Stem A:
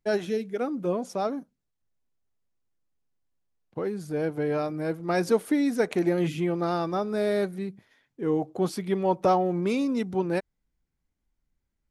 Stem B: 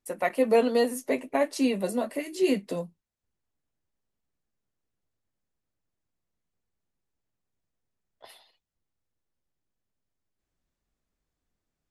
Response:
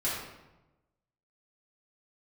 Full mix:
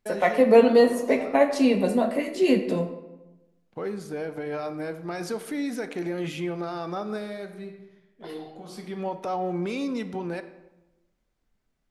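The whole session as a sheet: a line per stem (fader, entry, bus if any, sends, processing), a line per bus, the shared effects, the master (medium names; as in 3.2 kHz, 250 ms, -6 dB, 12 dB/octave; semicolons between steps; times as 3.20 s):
+1.0 dB, 0.00 s, send -15.5 dB, tilt EQ +2 dB/octave; peak limiter -24.5 dBFS, peak gain reduction 11.5 dB; auto duck -22 dB, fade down 1.05 s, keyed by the second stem
+3.0 dB, 0.00 s, send -11 dB, none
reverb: on, RT60 1.0 s, pre-delay 4 ms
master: treble shelf 6.7 kHz -12 dB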